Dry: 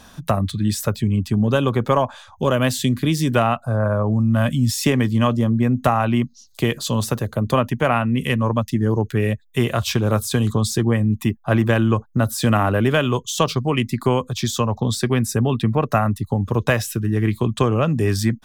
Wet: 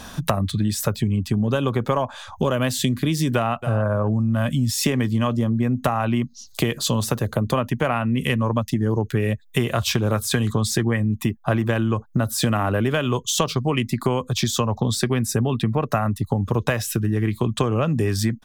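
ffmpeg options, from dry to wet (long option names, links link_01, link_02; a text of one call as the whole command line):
ffmpeg -i in.wav -filter_complex "[0:a]asplit=2[link_01][link_02];[link_02]afade=type=in:start_time=3.35:duration=0.01,afade=type=out:start_time=3.8:duration=0.01,aecho=0:1:270|540:0.158489|0.0158489[link_03];[link_01][link_03]amix=inputs=2:normalize=0,asettb=1/sr,asplit=3[link_04][link_05][link_06];[link_04]atrim=end=10.144[link_07];[link_05]atrim=start=10.14:end=11.01,asetpts=PTS-STARTPTS,afade=type=in:duration=0.004:curve=qsin,afade=type=out:start_time=0.866:duration=0.004:curve=qsin,equalizer=frequency=1900:width=1.8:gain=7[link_08];[link_06]atrim=start=11.006[link_09];[link_07][link_08]acrossfade=duration=0.004:curve1=hsin:curve2=qsin[link_10];[link_10][link_09]acrossfade=duration=0.004:curve1=qsin:curve2=hsin,acompressor=threshold=-27dB:ratio=4,volume=7.5dB" out.wav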